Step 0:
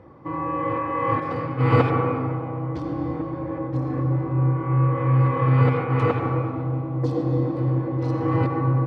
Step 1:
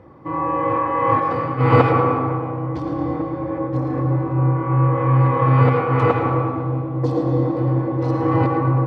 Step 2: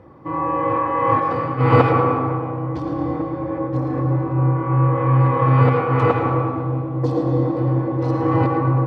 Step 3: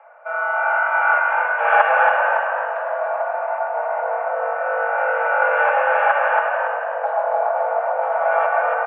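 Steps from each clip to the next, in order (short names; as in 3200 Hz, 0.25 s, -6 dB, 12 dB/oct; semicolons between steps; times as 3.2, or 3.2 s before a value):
dynamic EQ 790 Hz, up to +5 dB, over -34 dBFS, Q 0.81; thinning echo 0.11 s, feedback 45%, level -10 dB; gain +2 dB
notch 2100 Hz, Q 25
frequency-shifting echo 0.278 s, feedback 39%, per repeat +49 Hz, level -4 dB; mistuned SSB +340 Hz 210–2400 Hz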